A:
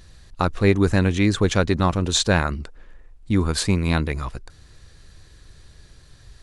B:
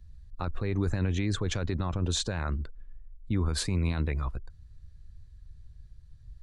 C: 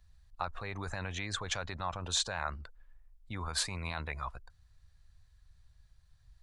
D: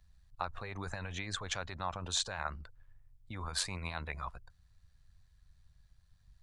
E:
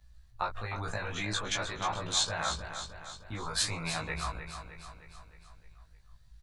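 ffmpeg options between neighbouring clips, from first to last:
-filter_complex "[0:a]afftdn=nr=16:nf=-42,acrossover=split=100|4900[s0][s1][s2];[s0]acontrast=78[s3];[s3][s1][s2]amix=inputs=3:normalize=0,alimiter=limit=0.237:level=0:latency=1:release=38,volume=0.447"
-af "lowshelf=f=510:t=q:w=1.5:g=-12.5"
-af "tremolo=f=93:d=0.462"
-filter_complex "[0:a]flanger=delay=15.5:depth=2.1:speed=0.66,asplit=2[s0][s1];[s1]adelay=19,volume=0.794[s2];[s0][s2]amix=inputs=2:normalize=0,asplit=2[s3][s4];[s4]aecho=0:1:308|616|924|1232|1540|1848:0.355|0.192|0.103|0.0559|0.0302|0.0163[s5];[s3][s5]amix=inputs=2:normalize=0,volume=2"

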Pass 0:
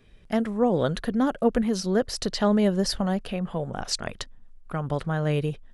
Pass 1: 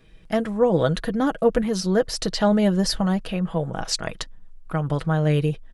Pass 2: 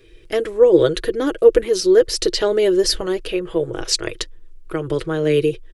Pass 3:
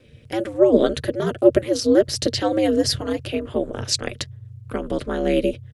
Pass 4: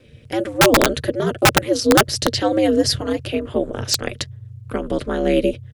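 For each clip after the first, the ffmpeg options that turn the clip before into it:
-af "aecho=1:1:6.2:0.46,volume=1.33"
-af "firequalizer=gain_entry='entry(110,0);entry(200,-20);entry(350,13);entry(720,-10);entry(1000,-5);entry(2300,3)':delay=0.05:min_phase=1,volume=1.41"
-af "aeval=exprs='val(0)*sin(2*PI*110*n/s)':c=same"
-af "aeval=exprs='(mod(2.37*val(0)+1,2)-1)/2.37':c=same,volume=1.33"

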